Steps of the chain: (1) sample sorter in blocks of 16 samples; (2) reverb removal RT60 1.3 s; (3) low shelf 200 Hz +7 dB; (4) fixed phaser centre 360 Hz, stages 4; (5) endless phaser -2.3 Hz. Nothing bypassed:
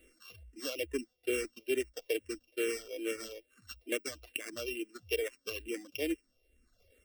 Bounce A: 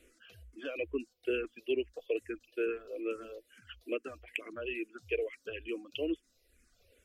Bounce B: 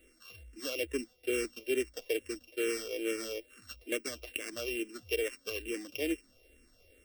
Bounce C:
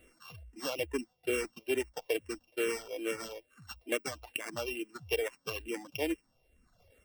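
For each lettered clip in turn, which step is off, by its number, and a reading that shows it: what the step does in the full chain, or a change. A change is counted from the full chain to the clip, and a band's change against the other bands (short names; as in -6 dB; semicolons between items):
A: 1, distortion -3 dB; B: 2, momentary loudness spread change -3 LU; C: 4, 1 kHz band +9.0 dB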